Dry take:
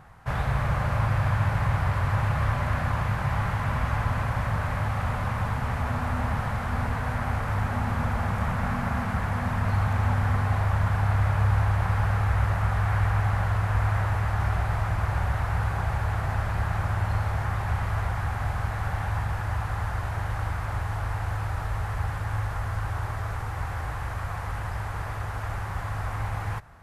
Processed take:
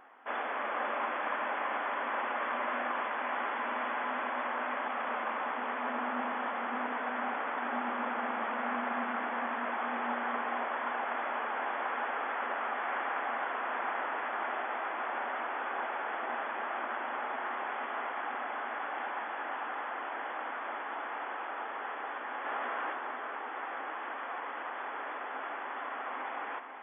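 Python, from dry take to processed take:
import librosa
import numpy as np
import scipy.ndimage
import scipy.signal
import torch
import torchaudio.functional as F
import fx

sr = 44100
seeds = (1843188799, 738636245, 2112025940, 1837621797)

p1 = fx.brickwall_bandpass(x, sr, low_hz=230.0, high_hz=3500.0)
p2 = p1 + fx.echo_single(p1, sr, ms=495, db=-7.5, dry=0)
p3 = fx.env_flatten(p2, sr, amount_pct=50, at=(22.44, 22.92), fade=0.02)
y = F.gain(torch.from_numpy(p3), -2.5).numpy()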